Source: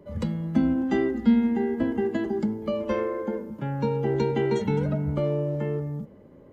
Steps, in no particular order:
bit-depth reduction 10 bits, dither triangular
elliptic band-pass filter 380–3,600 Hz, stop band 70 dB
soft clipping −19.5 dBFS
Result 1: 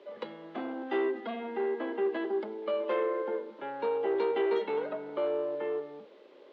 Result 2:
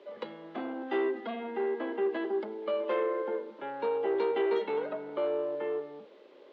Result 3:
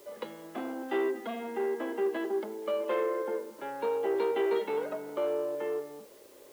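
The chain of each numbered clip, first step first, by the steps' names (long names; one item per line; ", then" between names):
soft clipping, then bit-depth reduction, then elliptic band-pass filter
bit-depth reduction, then soft clipping, then elliptic band-pass filter
soft clipping, then elliptic band-pass filter, then bit-depth reduction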